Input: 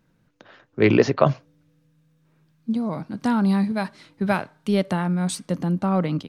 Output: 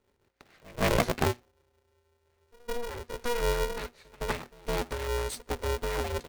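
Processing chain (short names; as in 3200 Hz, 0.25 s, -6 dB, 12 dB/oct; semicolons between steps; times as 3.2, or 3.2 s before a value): minimum comb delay 0.47 ms; rotary speaker horn 6.7 Hz; pre-echo 0.162 s -24 dB; polarity switched at an audio rate 240 Hz; gain -6 dB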